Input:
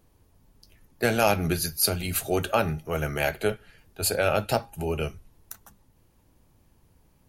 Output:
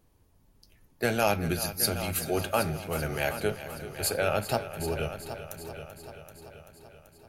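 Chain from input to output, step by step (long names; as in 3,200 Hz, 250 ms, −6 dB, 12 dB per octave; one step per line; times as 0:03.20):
echo machine with several playback heads 386 ms, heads first and second, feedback 54%, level −13.5 dB
level −3.5 dB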